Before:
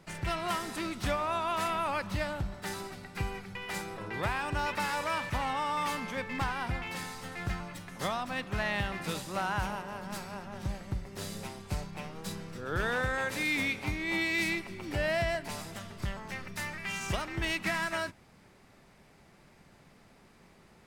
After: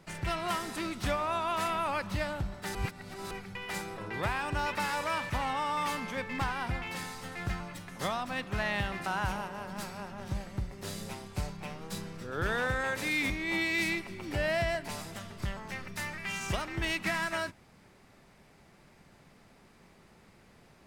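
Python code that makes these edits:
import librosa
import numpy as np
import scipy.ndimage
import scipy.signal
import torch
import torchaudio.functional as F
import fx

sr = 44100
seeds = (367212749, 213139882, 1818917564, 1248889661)

y = fx.edit(x, sr, fx.reverse_span(start_s=2.75, length_s=0.56),
    fx.cut(start_s=9.06, length_s=0.34),
    fx.cut(start_s=13.64, length_s=0.26), tone=tone)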